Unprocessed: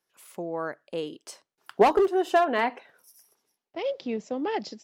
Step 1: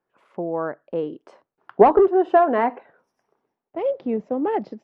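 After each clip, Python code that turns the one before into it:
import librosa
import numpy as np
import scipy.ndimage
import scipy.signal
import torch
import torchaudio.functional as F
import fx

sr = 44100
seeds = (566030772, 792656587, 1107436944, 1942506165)

y = scipy.signal.sosfilt(scipy.signal.butter(2, 1200.0, 'lowpass', fs=sr, output='sos'), x)
y = y * librosa.db_to_amplitude(6.5)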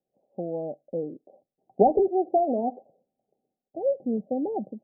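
y = scipy.signal.sosfilt(scipy.signal.cheby1(6, 6, 800.0, 'lowpass', fs=sr, output='sos'), x)
y = y * librosa.db_to_amplitude(-1.0)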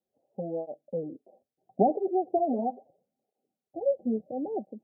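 y = fx.flanger_cancel(x, sr, hz=0.75, depth_ms=7.4)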